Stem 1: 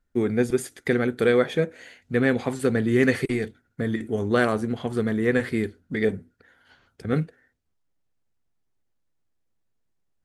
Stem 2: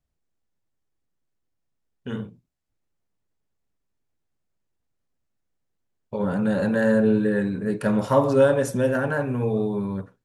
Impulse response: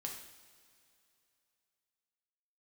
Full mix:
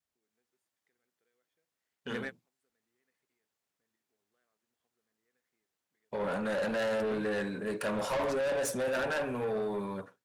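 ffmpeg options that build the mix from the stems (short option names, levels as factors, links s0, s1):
-filter_complex "[0:a]acompressor=threshold=0.0178:ratio=3,volume=1[s0];[1:a]adynamicequalizer=threshold=0.0282:dfrequency=590:dqfactor=1.8:tfrequency=590:tqfactor=1.8:attack=5:release=100:ratio=0.375:range=2:mode=boostabove:tftype=bell,asoftclip=type=tanh:threshold=0.237,volume=0.944,asplit=2[s1][s2];[s2]apad=whole_len=451720[s3];[s0][s3]sidechaingate=range=0.00501:threshold=0.0178:ratio=16:detection=peak[s4];[s4][s1]amix=inputs=2:normalize=0,highpass=f=870:p=1,dynaudnorm=f=180:g=3:m=1.5,asoftclip=type=tanh:threshold=0.0376"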